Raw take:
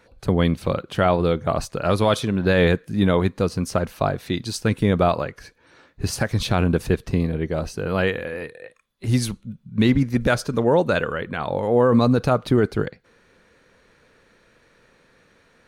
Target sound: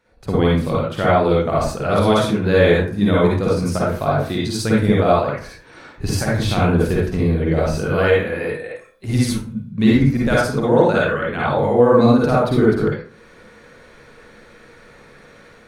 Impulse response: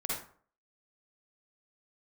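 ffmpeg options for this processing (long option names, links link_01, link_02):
-filter_complex "[0:a]dynaudnorm=framelen=150:gausssize=3:maxgain=15dB[link_01];[1:a]atrim=start_sample=2205[link_02];[link_01][link_02]afir=irnorm=-1:irlink=0,volume=-7.5dB"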